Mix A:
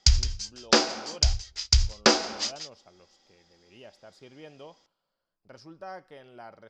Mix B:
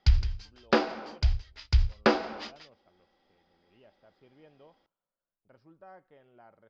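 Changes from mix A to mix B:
speech -9.0 dB; master: add air absorption 370 m

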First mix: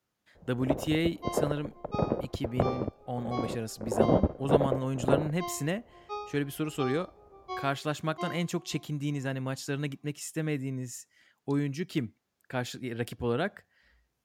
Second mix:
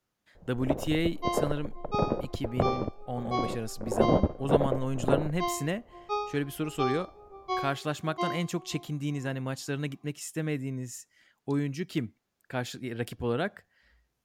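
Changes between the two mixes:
second sound +6.5 dB; master: remove HPF 46 Hz

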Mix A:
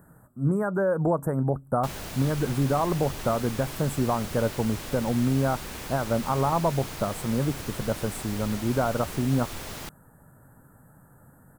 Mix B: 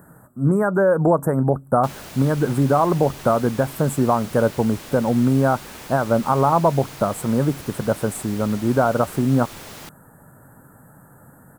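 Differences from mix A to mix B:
speech +8.0 dB; master: add low shelf 77 Hz -11 dB

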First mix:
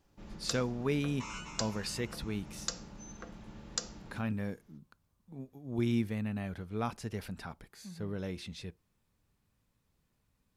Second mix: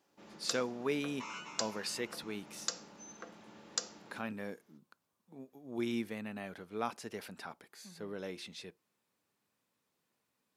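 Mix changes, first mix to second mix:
second sound: add running mean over 4 samples; master: add HPF 300 Hz 12 dB/oct

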